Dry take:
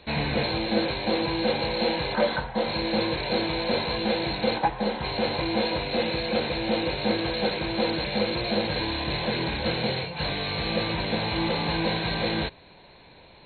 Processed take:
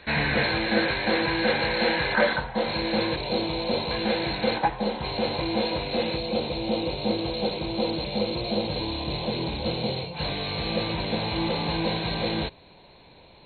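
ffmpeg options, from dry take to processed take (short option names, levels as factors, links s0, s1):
-af "asetnsamples=n=441:p=0,asendcmd='2.33 equalizer g 2;3.16 equalizer g -9;3.91 equalizer g 2;4.76 equalizer g -5;6.17 equalizer g -14.5;10.14 equalizer g -5.5',equalizer=f=1700:t=o:w=0.8:g=11"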